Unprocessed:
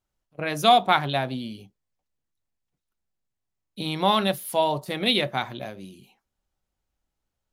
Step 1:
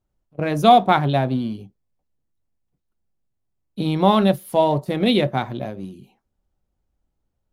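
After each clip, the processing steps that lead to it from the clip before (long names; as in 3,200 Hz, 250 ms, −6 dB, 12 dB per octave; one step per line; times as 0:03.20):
tilt shelving filter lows +7 dB, about 900 Hz
in parallel at −11 dB: dead-zone distortion −35.5 dBFS
on the sum: level +1.5 dB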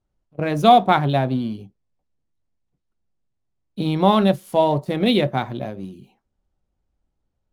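running median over 3 samples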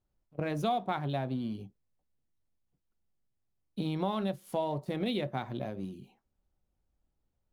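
downward compressor 3 to 1, threshold −27 dBFS, peak gain reduction 14 dB
level −5 dB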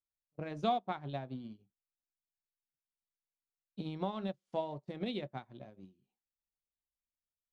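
low-pass filter 7,500 Hz 24 dB per octave
expander for the loud parts 2.5 to 1, over −45 dBFS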